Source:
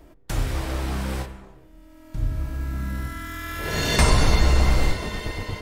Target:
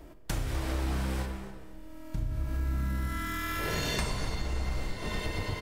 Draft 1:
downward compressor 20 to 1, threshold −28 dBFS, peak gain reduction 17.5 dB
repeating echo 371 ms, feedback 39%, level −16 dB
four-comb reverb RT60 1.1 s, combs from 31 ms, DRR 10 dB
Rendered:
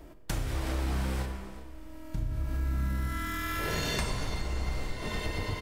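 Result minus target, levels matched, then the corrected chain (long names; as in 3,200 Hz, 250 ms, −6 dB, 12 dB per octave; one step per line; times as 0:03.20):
echo 121 ms late
downward compressor 20 to 1, threshold −28 dBFS, peak gain reduction 17.5 dB
repeating echo 250 ms, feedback 39%, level −16 dB
four-comb reverb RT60 1.1 s, combs from 31 ms, DRR 10 dB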